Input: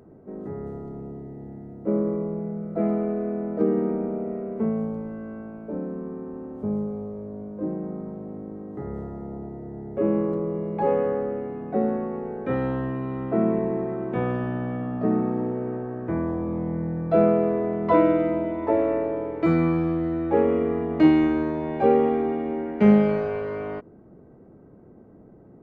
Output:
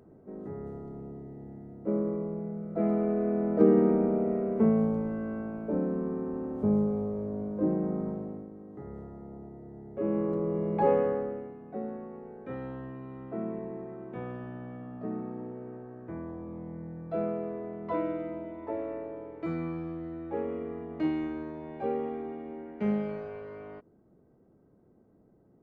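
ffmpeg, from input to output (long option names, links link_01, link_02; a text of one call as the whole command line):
ffmpeg -i in.wav -af "volume=10.5dB,afade=type=in:start_time=2.67:duration=0.99:silence=0.446684,afade=type=out:start_time=8.09:duration=0.41:silence=0.281838,afade=type=in:start_time=9.94:duration=0.81:silence=0.354813,afade=type=out:start_time=10.75:duration=0.82:silence=0.237137" out.wav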